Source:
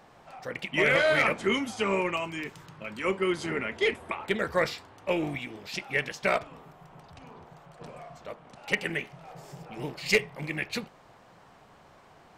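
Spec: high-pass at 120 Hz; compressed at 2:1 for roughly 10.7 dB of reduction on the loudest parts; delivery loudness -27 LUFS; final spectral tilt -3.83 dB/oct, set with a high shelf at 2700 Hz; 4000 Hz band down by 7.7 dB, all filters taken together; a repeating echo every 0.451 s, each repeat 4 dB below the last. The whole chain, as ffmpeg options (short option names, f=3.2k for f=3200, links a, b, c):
-af "highpass=120,highshelf=f=2.7k:g=-4.5,equalizer=f=4k:t=o:g=-7.5,acompressor=threshold=-41dB:ratio=2,aecho=1:1:451|902|1353|1804|2255|2706|3157|3608|4059:0.631|0.398|0.25|0.158|0.0994|0.0626|0.0394|0.0249|0.0157,volume=11.5dB"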